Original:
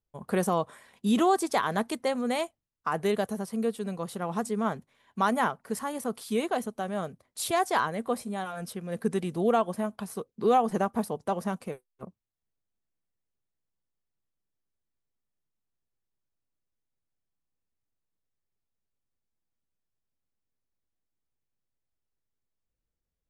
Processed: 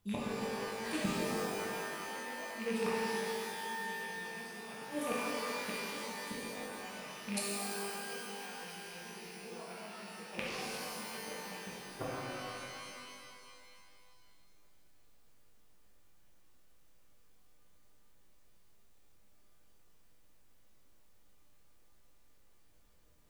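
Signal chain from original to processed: rattling part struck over -38 dBFS, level -19 dBFS; reverse; compressor 10:1, threshold -33 dBFS, peak gain reduction 15 dB; reverse; reverse echo 0.986 s -15 dB; flipped gate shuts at -36 dBFS, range -31 dB; shimmer reverb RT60 2.4 s, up +12 st, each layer -2 dB, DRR -6.5 dB; gain +11 dB

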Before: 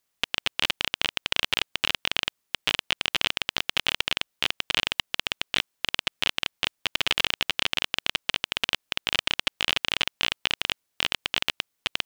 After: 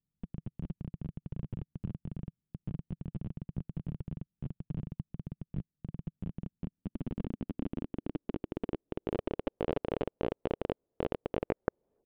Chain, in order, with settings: tape stop at the end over 0.71 s; low-pass sweep 160 Hz -> 470 Hz, 6.1–9.6; gain +3.5 dB

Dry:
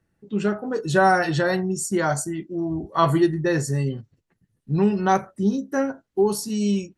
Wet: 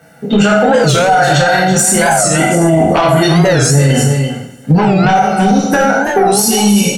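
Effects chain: spectral trails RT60 0.39 s; HPF 250 Hz 12 dB/oct; bell 5000 Hz -4 dB 2.5 oct; comb 1.4 ms, depth 82%; compressor 12:1, threshold -32 dBFS, peak gain reduction 22 dB; sine folder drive 7 dB, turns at -19.5 dBFS; echo 0.333 s -10 dB; two-slope reverb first 0.46 s, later 1.6 s, DRR -3 dB; maximiser +18 dB; record warp 45 rpm, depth 160 cents; gain -1 dB

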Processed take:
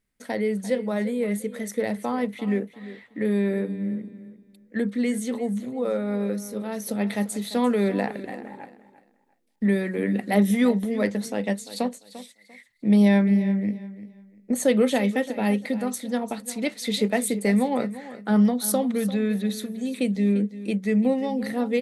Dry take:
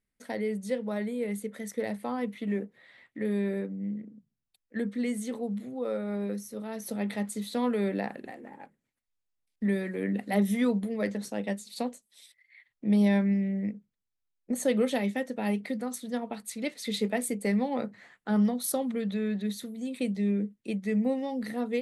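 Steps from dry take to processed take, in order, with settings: feedback echo 0.345 s, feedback 25%, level -15 dB; gain +6 dB

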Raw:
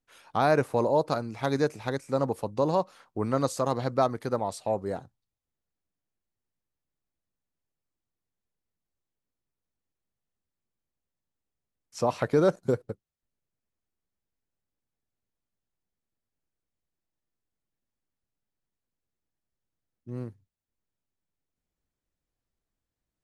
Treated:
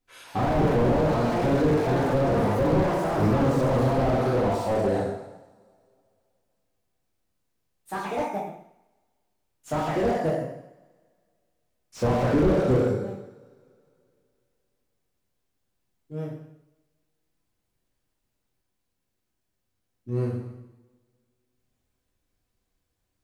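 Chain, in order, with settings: two-slope reverb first 0.94 s, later 2.7 s, from -27 dB, DRR -7 dB; echoes that change speed 0.172 s, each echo +4 st, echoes 2, each echo -6 dB; slew limiter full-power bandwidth 38 Hz; gain +1.5 dB

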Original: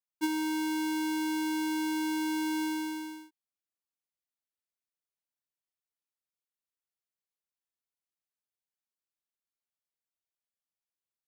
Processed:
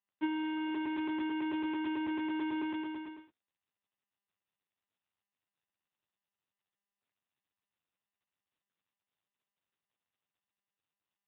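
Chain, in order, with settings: crackling interface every 0.11 s, samples 256, repeat, from 0.74; gain -2.5 dB; AMR-NB 6.7 kbps 8000 Hz

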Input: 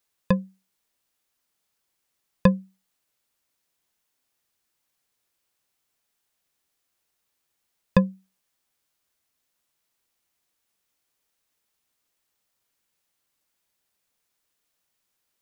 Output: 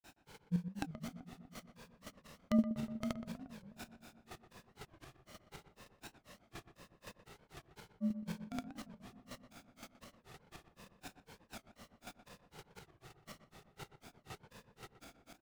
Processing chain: per-bin compression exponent 0.6; expander -54 dBFS; compressor 6:1, threshold -32 dBFS, peak gain reduction 19.5 dB; tapped delay 0.547/0.638 s -13.5/-18.5 dB; grains 0.142 s, grains 4/s, pitch spread up and down by 7 st; chopper 5.8 Hz, depth 60%, duty 25%; darkening echo 0.122 s, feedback 75%, low-pass 1400 Hz, level -10 dB; record warp 45 rpm, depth 250 cents; gain +17.5 dB

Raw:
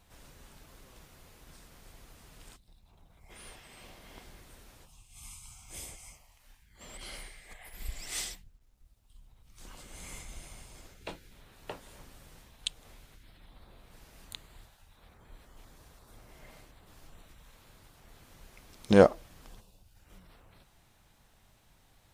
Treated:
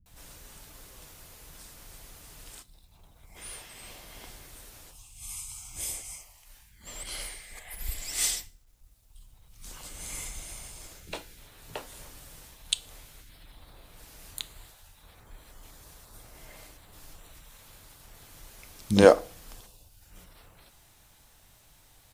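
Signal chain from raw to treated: high shelf 4900 Hz +9.5 dB; bands offset in time lows, highs 60 ms, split 230 Hz; FDN reverb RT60 0.43 s, low-frequency decay 1.1×, high-frequency decay 0.95×, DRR 14.5 dB; gain +3 dB

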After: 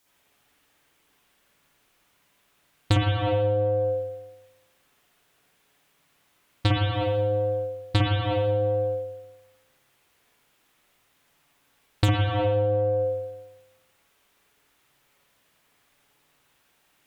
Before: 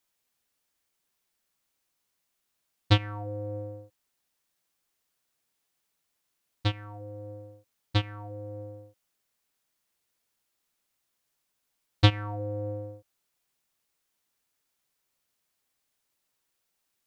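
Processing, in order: added harmonics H 5 -11 dB, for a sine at -5 dBFS; spring tank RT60 1 s, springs 52/59 ms, chirp 75 ms, DRR -8 dB; compressor 10:1, threshold -21 dBFS, peak gain reduction 17.5 dB; gain +2 dB

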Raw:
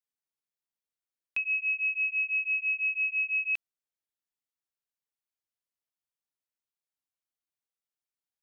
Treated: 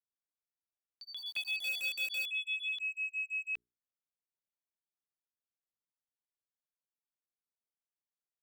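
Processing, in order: Wiener smoothing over 15 samples; notches 60/120/180/240/300/360/420 Hz; 1.59–2.31 requantised 6-bit, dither none; echoes that change speed 0.123 s, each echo +5 st, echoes 2, each echo -6 dB; gain -6.5 dB

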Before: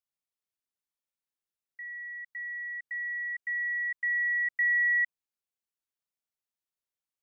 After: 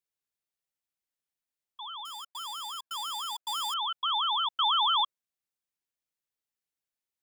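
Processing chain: 2.05–3.74 switching dead time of 0.099 ms; frequency shift +270 Hz; ring modulator with a swept carrier 1100 Hz, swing 25%, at 6 Hz; gain +3 dB

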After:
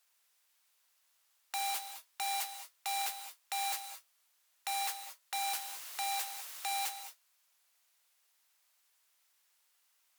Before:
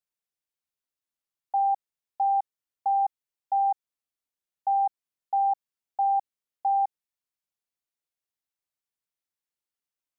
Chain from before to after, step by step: modulation noise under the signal 19 dB; added harmonics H 5 -17 dB, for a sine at -17 dBFS; soft clip -21.5 dBFS, distortion -25 dB; 5.4–6.7 requantised 10-bit, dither triangular; sine folder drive 18 dB, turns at -22.5 dBFS; HPF 800 Hz 12 dB/oct; non-linear reverb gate 0.24 s rising, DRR 8.5 dB; gain -8.5 dB

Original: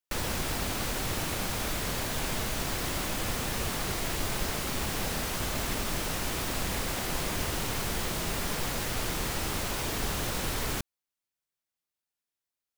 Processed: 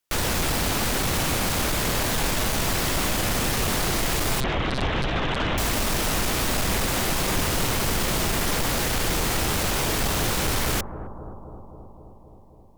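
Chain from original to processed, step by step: 4.4–5.58 monotone LPC vocoder at 8 kHz 130 Hz; sine folder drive 11 dB, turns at -15.5 dBFS; analogue delay 0.263 s, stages 2048, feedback 74%, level -11.5 dB; gain -4.5 dB

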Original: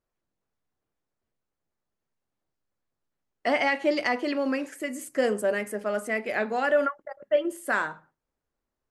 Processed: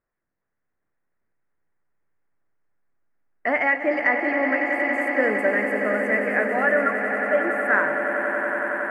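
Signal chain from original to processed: resonant high shelf 2700 Hz -12.5 dB, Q 3; swelling echo 92 ms, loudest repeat 8, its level -11 dB

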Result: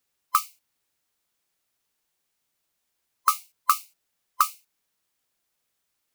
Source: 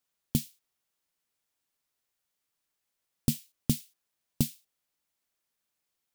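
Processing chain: band-swap scrambler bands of 1000 Hz; gain +5.5 dB

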